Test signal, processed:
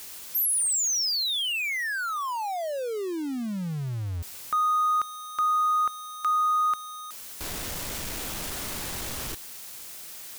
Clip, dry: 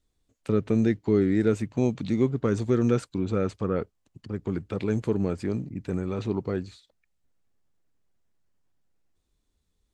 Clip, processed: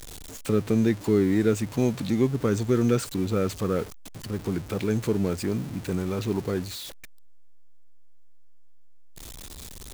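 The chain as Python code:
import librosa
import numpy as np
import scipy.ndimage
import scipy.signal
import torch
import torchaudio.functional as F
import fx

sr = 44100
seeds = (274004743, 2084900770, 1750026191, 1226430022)

y = x + 0.5 * 10.0 ** (-36.5 / 20.0) * np.sign(x)
y = fx.high_shelf(y, sr, hz=3800.0, db=6.5)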